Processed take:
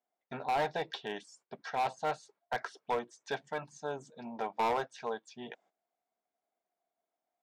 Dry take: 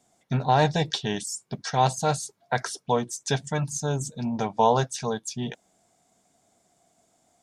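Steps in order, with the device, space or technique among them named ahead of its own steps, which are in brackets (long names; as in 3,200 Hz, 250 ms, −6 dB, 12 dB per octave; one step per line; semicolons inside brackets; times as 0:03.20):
walkie-talkie (band-pass filter 430–2,400 Hz; hard clipping −21 dBFS, distortion −8 dB; noise gate −59 dBFS, range −14 dB)
level −5 dB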